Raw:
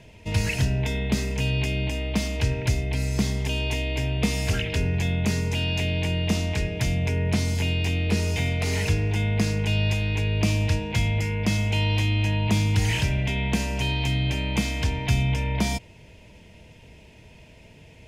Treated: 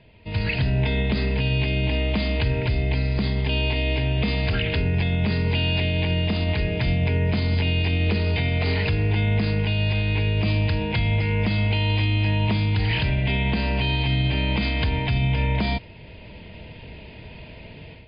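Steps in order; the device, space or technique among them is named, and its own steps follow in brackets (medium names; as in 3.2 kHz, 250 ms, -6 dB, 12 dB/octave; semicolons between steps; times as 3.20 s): low-bitrate web radio (level rider gain up to 13 dB; peak limiter -9.5 dBFS, peak gain reduction 8 dB; trim -4 dB; MP3 32 kbps 11.025 kHz)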